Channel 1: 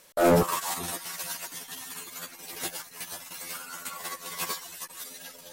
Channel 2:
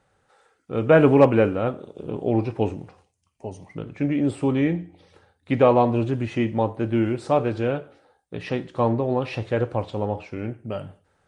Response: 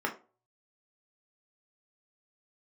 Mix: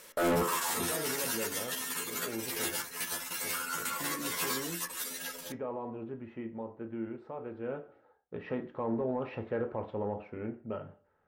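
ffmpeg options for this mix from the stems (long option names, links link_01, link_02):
-filter_complex "[0:a]equalizer=frequency=780:width_type=o:width=0.72:gain=-5,volume=2dB,asplit=2[link_01][link_02];[link_02]volume=-10dB[link_03];[1:a]lowpass=2000,alimiter=limit=-13.5dB:level=0:latency=1:release=44,volume=-10.5dB,afade=type=in:start_time=7.58:duration=0.52:silence=0.354813,asplit=2[link_04][link_05];[link_05]volume=-9.5dB[link_06];[2:a]atrim=start_sample=2205[link_07];[link_03][link_06]amix=inputs=2:normalize=0[link_08];[link_08][link_07]afir=irnorm=-1:irlink=0[link_09];[link_01][link_04][link_09]amix=inputs=3:normalize=0,asoftclip=type=tanh:threshold=-18dB,alimiter=level_in=0.5dB:limit=-24dB:level=0:latency=1:release=20,volume=-0.5dB"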